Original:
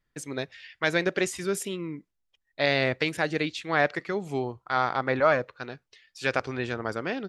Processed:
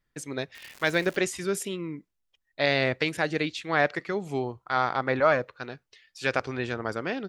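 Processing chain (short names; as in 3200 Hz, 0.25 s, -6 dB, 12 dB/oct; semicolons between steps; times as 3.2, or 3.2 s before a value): 0.54–1.16 crackle 290/s -34 dBFS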